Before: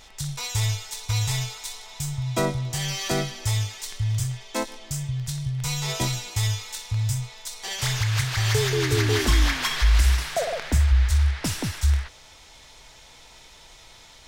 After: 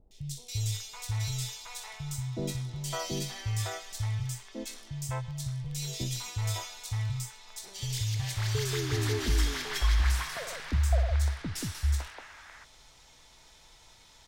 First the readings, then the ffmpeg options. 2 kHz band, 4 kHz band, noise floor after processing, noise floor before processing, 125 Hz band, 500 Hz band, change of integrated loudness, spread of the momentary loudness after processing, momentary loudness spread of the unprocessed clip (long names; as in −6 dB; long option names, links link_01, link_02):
−9.0 dB, −8.5 dB, −57 dBFS, −49 dBFS, −7.0 dB, −9.0 dB, −7.5 dB, 13 LU, 11 LU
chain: -filter_complex "[0:a]acrossover=split=530|2500[link_01][link_02][link_03];[link_03]adelay=110[link_04];[link_02]adelay=560[link_05];[link_01][link_05][link_04]amix=inputs=3:normalize=0,volume=-7dB"